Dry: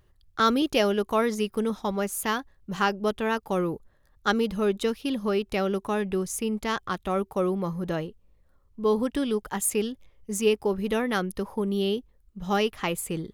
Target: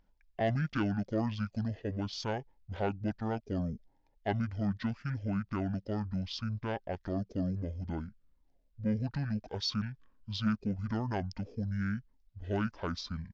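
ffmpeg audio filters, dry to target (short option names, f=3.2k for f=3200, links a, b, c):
-af "aresample=32000,aresample=44100,asetrate=22050,aresample=44100,atempo=2,asoftclip=type=tanh:threshold=-13dB,highshelf=f=5.6k:t=q:w=1.5:g=-7,volume=-7dB"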